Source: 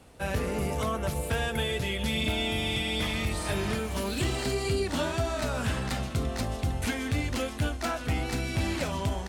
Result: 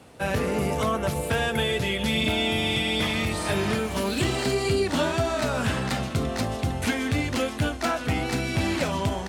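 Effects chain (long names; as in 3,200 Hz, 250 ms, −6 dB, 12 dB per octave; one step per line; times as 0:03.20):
high-pass filter 97 Hz 12 dB per octave
high-shelf EQ 6,300 Hz −4 dB
level +5.5 dB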